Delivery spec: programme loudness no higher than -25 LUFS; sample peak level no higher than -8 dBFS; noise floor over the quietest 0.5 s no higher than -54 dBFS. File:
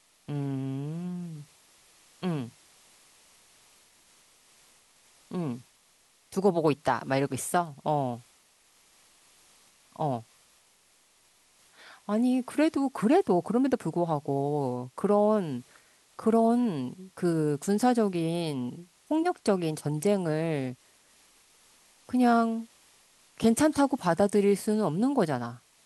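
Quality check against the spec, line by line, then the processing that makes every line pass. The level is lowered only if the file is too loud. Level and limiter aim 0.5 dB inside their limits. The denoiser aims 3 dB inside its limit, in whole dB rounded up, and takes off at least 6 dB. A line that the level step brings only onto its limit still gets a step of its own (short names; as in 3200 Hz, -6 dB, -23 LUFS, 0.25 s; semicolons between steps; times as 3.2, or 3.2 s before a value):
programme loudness -28.0 LUFS: OK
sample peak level -10.0 dBFS: OK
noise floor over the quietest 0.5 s -64 dBFS: OK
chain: none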